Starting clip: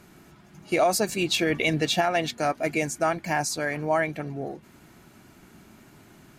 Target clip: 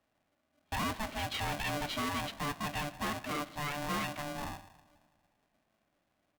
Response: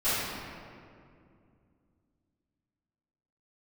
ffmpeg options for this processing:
-filter_complex "[0:a]agate=range=-21dB:threshold=-39dB:ratio=16:detection=peak,asoftclip=type=tanh:threshold=-26.5dB,asplit=2[a][b];[1:a]atrim=start_sample=2205,asetrate=79380,aresample=44100[c];[b][c]afir=irnorm=-1:irlink=0,volume=-23dB[d];[a][d]amix=inputs=2:normalize=0,aresample=8000,aresample=44100,aeval=exprs='val(0)*sgn(sin(2*PI*440*n/s))':c=same,volume=-5dB"

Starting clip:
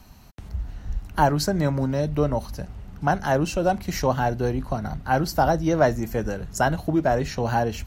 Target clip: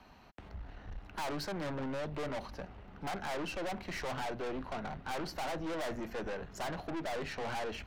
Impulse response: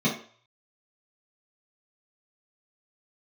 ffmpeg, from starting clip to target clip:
-filter_complex "[0:a]acrossover=split=270 3800:gain=0.224 1 0.0794[a][b][c];[a][b][c]amix=inputs=3:normalize=0,aeval=exprs='(tanh(63.1*val(0)+0.45)-tanh(0.45))/63.1':c=same"

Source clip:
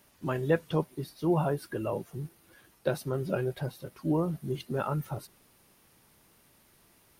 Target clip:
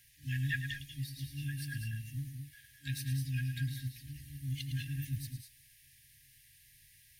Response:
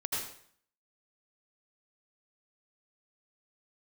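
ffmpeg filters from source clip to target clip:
-filter_complex "[0:a]asplit=2[a][b];[1:a]atrim=start_sample=2205,afade=t=out:st=0.17:d=0.01,atrim=end_sample=7938,adelay=108[c];[b][c]afir=irnorm=-1:irlink=0,volume=-7.5dB[d];[a][d]amix=inputs=2:normalize=0,afftfilt=real='re*(1-between(b*sr/4096,150,1600))':imag='im*(1-between(b*sr/4096,150,1600))':win_size=4096:overlap=0.75,asplit=2[e][f];[f]asetrate=88200,aresample=44100,atempo=0.5,volume=-17dB[g];[e][g]amix=inputs=2:normalize=0,volume=1dB"

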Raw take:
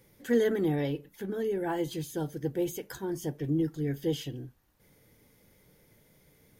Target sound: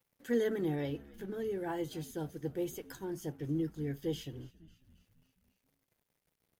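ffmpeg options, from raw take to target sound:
-filter_complex "[0:a]aeval=exprs='sgn(val(0))*max(abs(val(0))-0.00119,0)':c=same,asplit=6[a][b][c][d][e][f];[b]adelay=273,afreqshift=-80,volume=-21dB[g];[c]adelay=546,afreqshift=-160,volume=-25.4dB[h];[d]adelay=819,afreqshift=-240,volume=-29.9dB[i];[e]adelay=1092,afreqshift=-320,volume=-34.3dB[j];[f]adelay=1365,afreqshift=-400,volume=-38.7dB[k];[a][g][h][i][j][k]amix=inputs=6:normalize=0,volume=-5.5dB"

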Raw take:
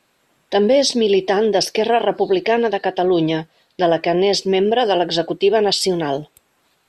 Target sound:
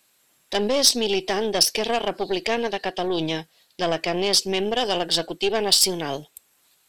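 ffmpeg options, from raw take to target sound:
-af "aeval=exprs='0.596*(cos(1*acos(clip(val(0)/0.596,-1,1)))-cos(1*PI/2))+0.0596*(cos(4*acos(clip(val(0)/0.596,-1,1)))-cos(4*PI/2))':c=same,crystalizer=i=5:c=0,volume=-9.5dB"

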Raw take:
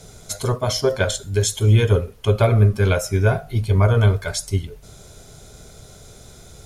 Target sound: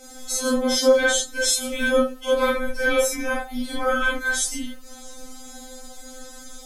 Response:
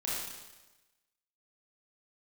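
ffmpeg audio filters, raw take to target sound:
-filter_complex "[1:a]atrim=start_sample=2205,atrim=end_sample=3528[a];[0:a][a]afir=irnorm=-1:irlink=0,afftfilt=real='re*3.46*eq(mod(b,12),0)':imag='im*3.46*eq(mod(b,12),0)':win_size=2048:overlap=0.75,volume=4.5dB"

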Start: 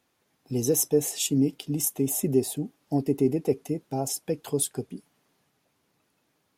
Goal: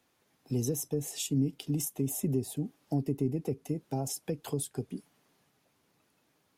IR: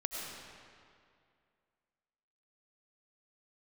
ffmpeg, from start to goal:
-filter_complex "[0:a]acrossover=split=200[a][b];[b]acompressor=threshold=-33dB:ratio=6[c];[a][c]amix=inputs=2:normalize=0"

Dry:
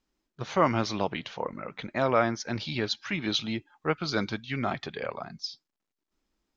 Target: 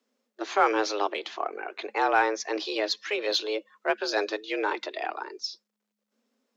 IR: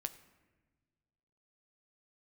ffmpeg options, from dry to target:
-filter_complex "[0:a]afreqshift=210,asplit=2[a][b];[b]asoftclip=type=tanh:threshold=-25dB,volume=-10.5dB[c];[a][c]amix=inputs=2:normalize=0"

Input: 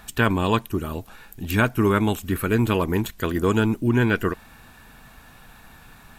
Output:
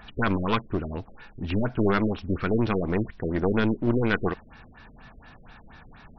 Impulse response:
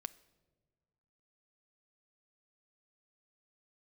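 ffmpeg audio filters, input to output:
-af "aeval=exprs='clip(val(0),-1,0.0447)':c=same,afftfilt=real='re*lt(b*sr/1024,580*pow(6100/580,0.5+0.5*sin(2*PI*4.2*pts/sr)))':imag='im*lt(b*sr/1024,580*pow(6100/580,0.5+0.5*sin(2*PI*4.2*pts/sr)))':win_size=1024:overlap=0.75"

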